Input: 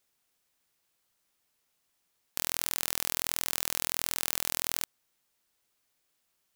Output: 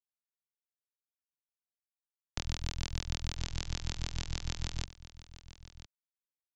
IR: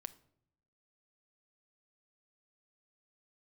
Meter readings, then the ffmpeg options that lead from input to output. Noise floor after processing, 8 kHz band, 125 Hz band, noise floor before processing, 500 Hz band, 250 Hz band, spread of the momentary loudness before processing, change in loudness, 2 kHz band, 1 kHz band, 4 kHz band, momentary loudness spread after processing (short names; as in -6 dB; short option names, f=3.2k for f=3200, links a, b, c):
under -85 dBFS, -13.0 dB, +13.5 dB, -77 dBFS, -8.0 dB, +1.5 dB, 5 LU, -9.0 dB, -8.0 dB, -8.5 dB, -6.0 dB, 17 LU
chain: -filter_complex "[0:a]aemphasis=mode=reproduction:type=riaa,acrossover=split=140|3000[a][b][c];[b]acompressor=threshold=-53dB:ratio=2.5[d];[a][d][c]amix=inputs=3:normalize=0,aresample=16000,aeval=exprs='sgn(val(0))*max(abs(val(0))-0.00266,0)':c=same,aresample=44100,tremolo=f=48:d=0.857,aecho=1:1:1008:0.15,volume=7dB"